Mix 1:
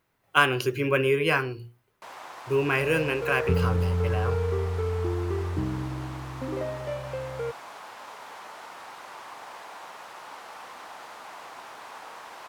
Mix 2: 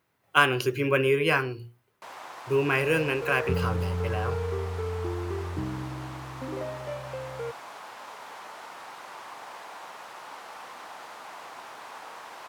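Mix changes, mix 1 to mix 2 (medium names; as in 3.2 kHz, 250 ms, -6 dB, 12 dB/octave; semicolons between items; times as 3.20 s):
second sound -3.0 dB; master: add high-pass 68 Hz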